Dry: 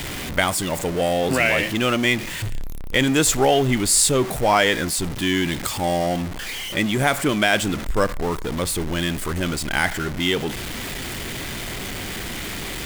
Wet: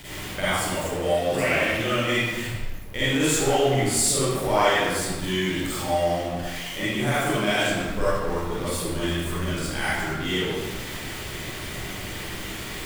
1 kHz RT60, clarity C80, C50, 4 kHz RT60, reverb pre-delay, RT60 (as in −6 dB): 1.3 s, −1.5 dB, −8.0 dB, 0.90 s, 39 ms, 1.3 s